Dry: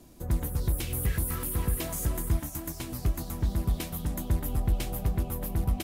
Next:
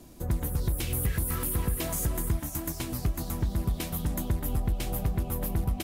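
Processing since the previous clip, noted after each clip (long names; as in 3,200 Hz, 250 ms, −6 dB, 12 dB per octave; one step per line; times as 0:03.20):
downward compressor 4 to 1, threshold −27 dBFS, peak gain reduction 6.5 dB
level +3 dB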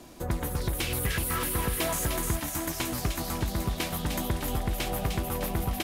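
mid-hump overdrive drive 11 dB, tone 3,700 Hz, clips at −15.5 dBFS
delay with a high-pass on its return 303 ms, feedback 52%, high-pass 2,200 Hz, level −4 dB
level +2.5 dB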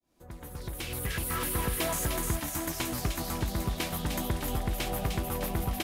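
fade in at the beginning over 1.50 s
level −1.5 dB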